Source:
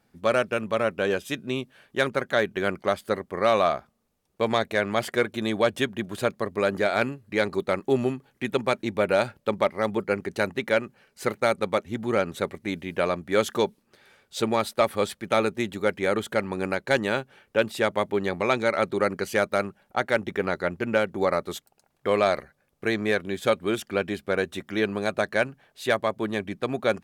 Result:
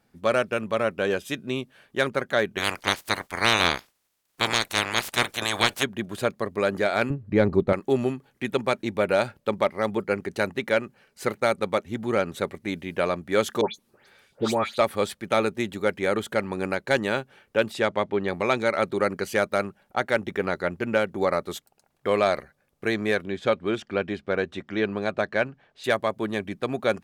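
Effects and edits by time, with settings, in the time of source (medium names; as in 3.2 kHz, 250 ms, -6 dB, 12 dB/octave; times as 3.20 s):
2.57–5.82 s: spectral peaks clipped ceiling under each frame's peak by 30 dB
7.10–7.73 s: tilt EQ -4 dB/octave
13.61–14.78 s: phase dispersion highs, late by 140 ms, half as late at 2.3 kHz
17.73–18.27 s: low-pass 8.8 kHz -> 3.5 kHz
23.25–25.84 s: distance through air 110 m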